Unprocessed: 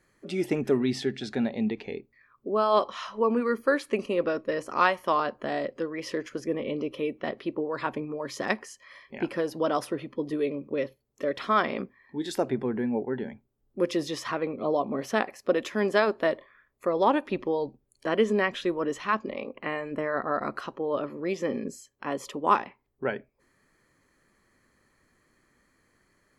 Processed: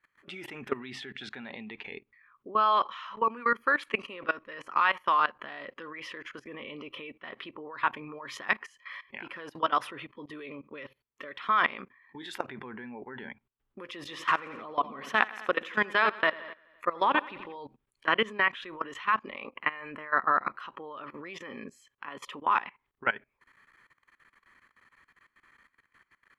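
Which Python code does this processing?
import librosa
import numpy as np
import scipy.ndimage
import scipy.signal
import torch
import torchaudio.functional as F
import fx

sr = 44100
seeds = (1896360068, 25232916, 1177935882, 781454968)

y = fx.echo_feedback(x, sr, ms=85, feedback_pct=53, wet_db=-11.5, at=(14.07, 17.56), fade=0.02)
y = fx.band_shelf(y, sr, hz=1800.0, db=14.5, octaves=2.3)
y = fx.level_steps(y, sr, step_db=19)
y = y * librosa.db_to_amplitude(-4.0)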